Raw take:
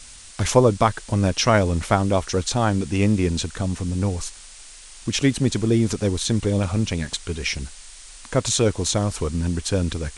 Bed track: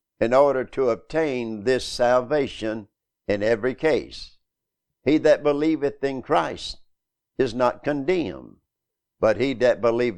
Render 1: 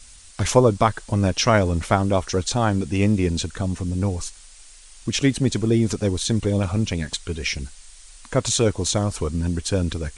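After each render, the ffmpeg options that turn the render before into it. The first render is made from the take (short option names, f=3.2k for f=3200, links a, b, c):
-af "afftdn=nr=6:nf=-43"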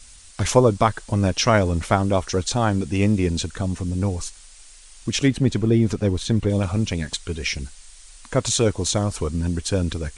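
-filter_complex "[0:a]asettb=1/sr,asplit=3[a][b][c];[a]atrim=end=5.284[d];[b]atrim=start=5.28:end=6.5,asetpts=PTS-STARTPTS,afade=t=in:d=0.004:c=qsin,afade=t=out:st=1.216:d=0.004:c=qsin,bass=f=250:g=2,treble=f=4k:g=-8[e];[c]atrim=start=6.496[f];[d][e]acrossfade=d=0.004:c1=hsin:c2=qsin[g];[g][f]acrossfade=d=0.004:c1=qsin:c2=hsin"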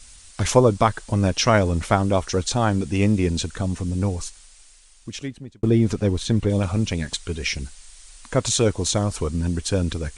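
-filter_complex "[0:a]asplit=2[a][b];[a]atrim=end=5.63,asetpts=PTS-STARTPTS,afade=t=out:st=4.05:d=1.58[c];[b]atrim=start=5.63,asetpts=PTS-STARTPTS,afade=t=in:d=0.004:c=hsin[d];[c][d]concat=n=2:v=0:a=1"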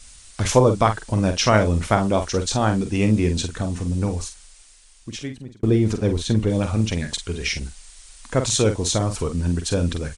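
-filter_complex "[0:a]asplit=2[a][b];[b]adelay=46,volume=-8dB[c];[a][c]amix=inputs=2:normalize=0"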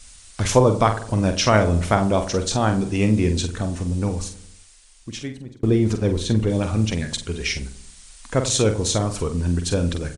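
-filter_complex "[0:a]asplit=2[a][b];[b]adelay=92,lowpass=f=980:p=1,volume=-12.5dB,asplit=2[c][d];[d]adelay=92,lowpass=f=980:p=1,volume=0.53,asplit=2[e][f];[f]adelay=92,lowpass=f=980:p=1,volume=0.53,asplit=2[g][h];[h]adelay=92,lowpass=f=980:p=1,volume=0.53,asplit=2[i][j];[j]adelay=92,lowpass=f=980:p=1,volume=0.53[k];[a][c][e][g][i][k]amix=inputs=6:normalize=0"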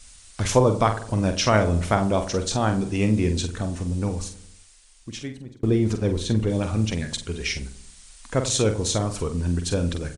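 -af "volume=-2.5dB"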